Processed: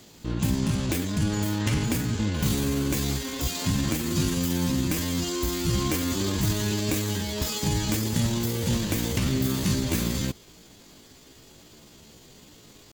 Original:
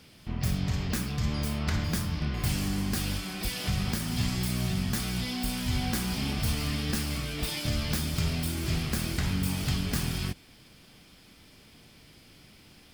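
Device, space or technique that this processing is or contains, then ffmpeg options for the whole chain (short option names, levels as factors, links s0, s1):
chipmunk voice: -af "asetrate=62367,aresample=44100,atempo=0.707107,volume=1.58"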